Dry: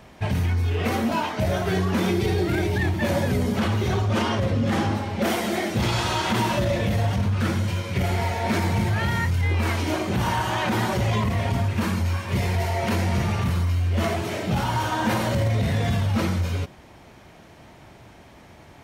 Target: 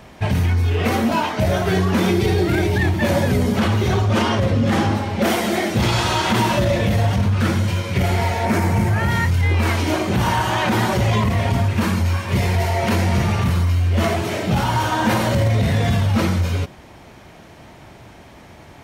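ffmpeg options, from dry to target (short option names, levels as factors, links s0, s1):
-filter_complex "[0:a]asettb=1/sr,asplit=3[s0][s1][s2];[s0]atrim=end=8.454[s3];[s1]atrim=start=8.45:end=9.1,asetpts=PTS-STARTPTS,afade=t=in:d=0.004:c=qsin,afade=t=out:st=0.646:d=0.004:c=qsin,equalizer=f=3700:w=1.5:g=-8.5[s4];[s2]atrim=start=9.096[s5];[s3][s4]acrossfade=d=0.004:c1=hsin:c2=qsin[s6];[s6][s5]acrossfade=d=0.004:c1=qsin:c2=hsin,volume=1.78"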